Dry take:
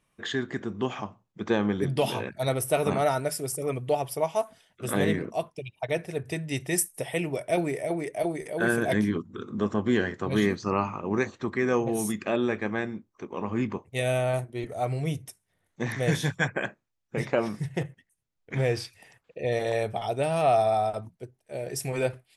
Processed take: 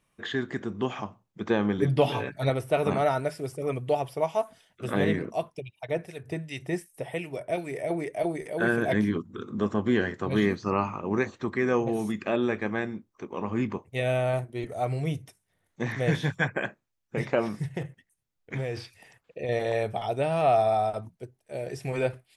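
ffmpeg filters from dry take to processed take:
-filter_complex "[0:a]asettb=1/sr,asplit=3[s0][s1][s2];[s0]atrim=end=1.784[s3];[s1]atrim=start=1.78:end=2.5,asetpts=PTS-STARTPTS,afade=t=in:d=0.004:c=qsin,afade=t=out:st=0.716:d=0.004:c=qsin,aecho=1:1:7:0.65,atrim=end_sample=31752[s4];[s2]atrim=start=2.496[s5];[s3][s4]acrossfade=d=0.004:c1=hsin:c2=qsin[s6];[s6][s5]acrossfade=d=0.004:c1=qsin:c2=hsin,asettb=1/sr,asplit=3[s7][s8][s9];[s7]atrim=end=5.604[s10];[s8]atrim=start=5.6:end=7.76,asetpts=PTS-STARTPTS,afade=t=in:d=0.004:c=qsin,afade=t=out:st=2.156:d=0.004:c=qsin,acrossover=split=1700[s11][s12];[s11]aeval=exprs='val(0)*(1-0.7/2+0.7/2*cos(2*PI*2.7*n/s))':c=same[s13];[s12]aeval=exprs='val(0)*(1-0.7/2-0.7/2*cos(2*PI*2.7*n/s))':c=same[s14];[s13][s14]amix=inputs=2:normalize=0[s15];[s9]atrim=start=7.756[s16];[s10][s15]acrossfade=d=0.004:c1=hsin:c2=qsin[s17];[s17][s16]acrossfade=d=0.004:c1=qsin:c2=hsin,asettb=1/sr,asplit=3[s18][s19][s20];[s18]atrim=end=17.774[s21];[s19]atrim=start=17.77:end=19.49,asetpts=PTS-STARTPTS,afade=t=in:d=0.004:c=qsin,afade=t=out:st=1.716:d=0.004:c=qsin,acompressor=threshold=0.0447:ratio=6:attack=3.2:release=140:knee=1:detection=peak[s22];[s20]atrim=start=19.486[s23];[s21][s22]acrossfade=d=0.004:c1=hsin:c2=qsin[s24];[s24][s23]acrossfade=d=0.004:c1=qsin:c2=hsin,acrossover=split=4000[s25][s26];[s26]acompressor=threshold=0.00251:ratio=4:attack=1:release=60[s27];[s25][s27]amix=inputs=2:normalize=0"

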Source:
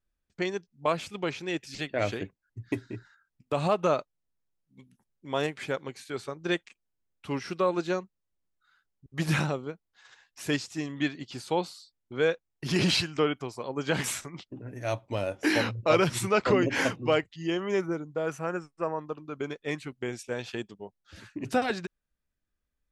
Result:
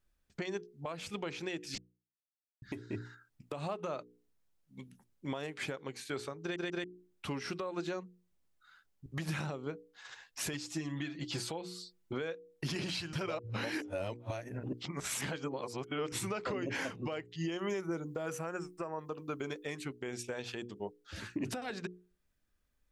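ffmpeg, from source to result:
-filter_complex "[0:a]asettb=1/sr,asplit=3[s0][s1][s2];[s0]atrim=end=10.534[s3];[s1]atrim=start=10.53:end=12.13,asetpts=PTS-STARTPTS,afade=t=in:d=0.004:c=qsin,afade=t=out:st=1.596:d=0.004:c=qsin,aecho=1:1:6:0.65,atrim=end_sample=70560[s4];[s2]atrim=start=12.126[s5];[s3][s4]acrossfade=d=0.004:c1=hsin:c2=qsin[s6];[s6][s5]acrossfade=d=0.004:c1=qsin:c2=hsin,asettb=1/sr,asplit=3[s7][s8][s9];[s7]atrim=end=17.524[s10];[s8]atrim=start=17.52:end=19.84,asetpts=PTS-STARTPTS,afade=t=in:d=0.004:c=qsin,afade=t=out:st=2.316:d=0.004:c=qsin,highshelf=f=7400:g=11.5[s11];[s9]atrim=start=19.836[s12];[s10][s11]acrossfade=d=0.004:c1=hsin:c2=qsin[s13];[s13][s12]acrossfade=d=0.004:c1=qsin:c2=hsin,asplit=8[s14][s15][s16][s17][s18][s19][s20][s21];[s14]atrim=end=1.78,asetpts=PTS-STARTPTS,afade=t=out:st=1.776:d=0.004:c=hsin[s22];[s15]atrim=start=1.78:end=2.62,asetpts=PTS-STARTPTS,volume=0[s23];[s16]atrim=start=2.62:end=6.562,asetpts=PTS-STARTPTS,afade=t=in:d=0.004:c=hsin[s24];[s17]atrim=start=6.418:end=6.562[s25];[s18]atrim=start=6.418:end=6.562[s26];[s19]atrim=start=6.838:end=13.132[s27];[s20]atrim=start=13.128:end=16.122,asetpts=PTS-STARTPTS,areverse[s28];[s21]atrim=start=16.118[s29];[s22][s23][s24]concat=n=3:v=0:a=1[s30];[s30][s25]acrossfade=d=0.004:c1=hsin:c2=hsin[s31];[s31][s26]acrossfade=d=0.004:c1=hsin:c2=hsin[s32];[s32][s27]acrossfade=d=0.004:c1=hsin:c2=hsin[s33];[s33][s28]acrossfade=d=0.004:c1=hsin:c2=hsin[s34];[s34][s29]acrossfade=d=0.004:c1=hsin:c2=hsin,bandreject=f=60:t=h:w=6,bandreject=f=120:t=h:w=6,bandreject=f=180:t=h:w=6,bandreject=f=240:t=h:w=6,bandreject=f=300:t=h:w=6,bandreject=f=360:t=h:w=6,bandreject=f=420:t=h:w=6,bandreject=f=480:t=h:w=6,acompressor=threshold=0.0282:ratio=10,alimiter=level_in=2.51:limit=0.0631:level=0:latency=1:release=416,volume=0.398,volume=1.78"

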